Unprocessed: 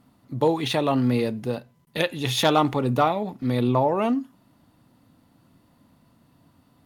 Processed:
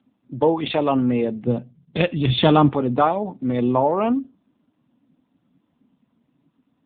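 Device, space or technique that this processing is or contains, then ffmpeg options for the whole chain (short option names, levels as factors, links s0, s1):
mobile call with aggressive noise cancelling: -filter_complex "[0:a]asettb=1/sr,asplit=3[s0][s1][s2];[s0]atrim=end=1.474[s3];[s1]atrim=start=1.47:end=2.69,asetpts=PTS-STARTPTS,afade=t=in:d=0.004:c=qsin,afade=t=out:st=1.216:d=0.004:c=qsin,bass=f=250:g=12,treble=f=4000:g=5[s4];[s2]atrim=start=2.686[s5];[s3][s4]acrossfade=d=0.004:c1=hsin:c2=qsin[s6];[s6][s5]acrossfade=d=0.004:c1=qsin:c2=hsin,highpass=160,afftdn=nr=12:nf=-45,volume=1.5" -ar 8000 -c:a libopencore_amrnb -b:a 7950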